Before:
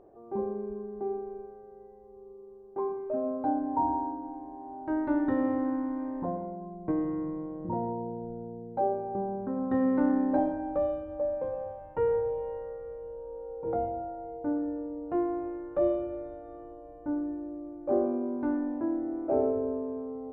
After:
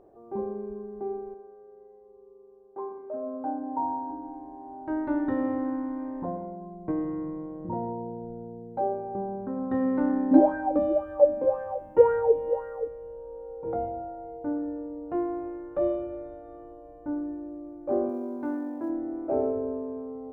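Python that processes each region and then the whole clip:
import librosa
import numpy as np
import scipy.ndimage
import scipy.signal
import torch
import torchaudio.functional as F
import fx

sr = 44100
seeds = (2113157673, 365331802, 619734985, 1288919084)

y = fx.chain(x, sr, fx.lowpass(hz=1200.0, slope=12),
    fx.tilt_eq(slope=3.5),
    fx.echo_wet_lowpass(ms=65, feedback_pct=72, hz=530.0, wet_db=-8.5), at=(1.34, 4.1))
y = fx.chain(y, sr, fx.bass_treble(bass_db=-2, treble_db=8),
    fx.bell_lfo(hz=1.9, low_hz=220.0, high_hz=1600.0, db=17), at=(10.31, 12.88))
y = fx.chain(y, sr, fx.highpass(hz=210.0, slope=6),
    fx.quant_float(bits=6), at=(18.09, 18.9))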